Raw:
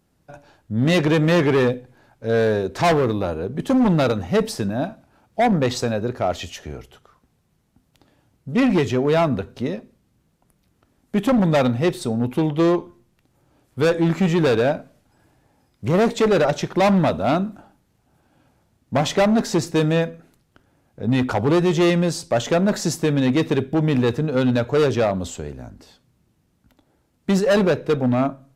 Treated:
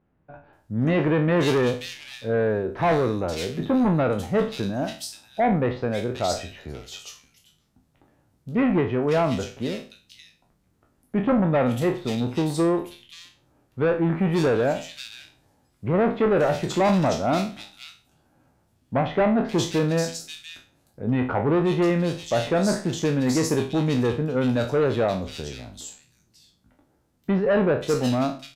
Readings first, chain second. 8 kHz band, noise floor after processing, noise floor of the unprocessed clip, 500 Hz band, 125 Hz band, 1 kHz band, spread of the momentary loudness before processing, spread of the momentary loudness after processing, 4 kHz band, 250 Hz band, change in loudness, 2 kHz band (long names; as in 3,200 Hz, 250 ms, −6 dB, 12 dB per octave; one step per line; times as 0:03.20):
−2.0 dB, −66 dBFS, −66 dBFS, −3.0 dB, −3.5 dB, −2.5 dB, 11 LU, 15 LU, −3.5 dB, −3.5 dB, −3.5 dB, −4.0 dB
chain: peak hold with a decay on every bin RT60 0.37 s
multiband delay without the direct sound lows, highs 530 ms, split 2,600 Hz
level −4 dB